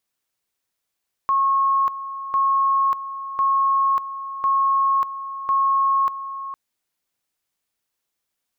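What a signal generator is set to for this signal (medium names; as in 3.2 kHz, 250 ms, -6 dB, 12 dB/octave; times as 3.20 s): two-level tone 1.09 kHz -15.5 dBFS, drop 12.5 dB, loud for 0.59 s, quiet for 0.46 s, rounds 5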